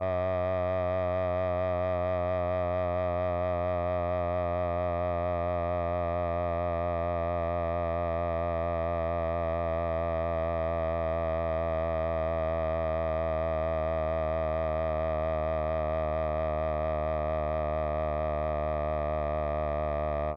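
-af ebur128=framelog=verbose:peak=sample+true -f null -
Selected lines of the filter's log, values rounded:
Integrated loudness:
  I:         -30.3 LUFS
  Threshold: -40.3 LUFS
Loudness range:
  LRA:         0.9 LU
  Threshold: -50.3 LUFS
  LRA low:   -30.6 LUFS
  LRA high:  -29.7 LUFS
Sample peak:
  Peak:      -22.4 dBFS
True peak:
  Peak:      -22.4 dBFS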